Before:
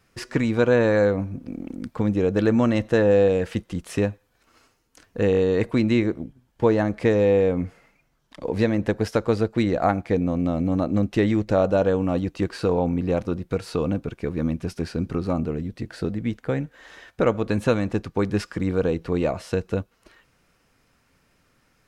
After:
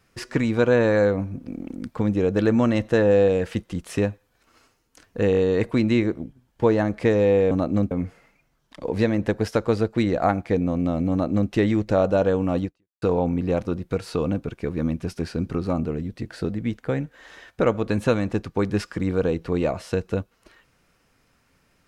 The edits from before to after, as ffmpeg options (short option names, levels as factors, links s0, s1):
-filter_complex "[0:a]asplit=4[s0][s1][s2][s3];[s0]atrim=end=7.512[s4];[s1]atrim=start=10.708:end=11.112[s5];[s2]atrim=start=7.508:end=12.62,asetpts=PTS-STARTPTS,afade=t=out:st=4.742:d=0.37:c=exp[s6];[s3]atrim=start=12.62,asetpts=PTS-STARTPTS,afade=t=in:d=0.004:c=hsin[s7];[s4][s5]acrossfade=d=0.004:c1=hsin:c2=hsin[s8];[s6][s7]concat=n=2:v=0:a=1[s9];[s8][s9]acrossfade=d=0.004:c1=hsin:c2=hsin"